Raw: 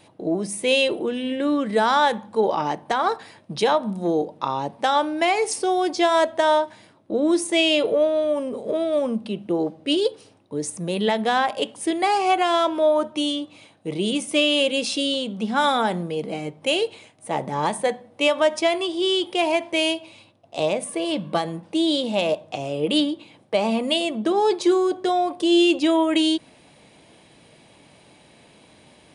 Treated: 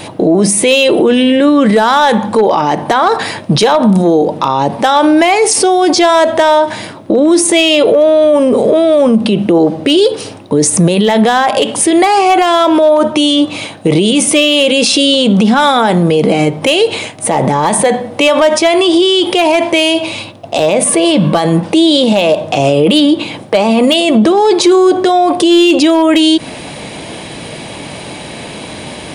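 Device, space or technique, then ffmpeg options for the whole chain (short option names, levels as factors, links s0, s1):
loud club master: -af "acompressor=threshold=0.0501:ratio=1.5,asoftclip=type=hard:threshold=0.158,alimiter=level_in=22.4:limit=0.891:release=50:level=0:latency=1,volume=0.891"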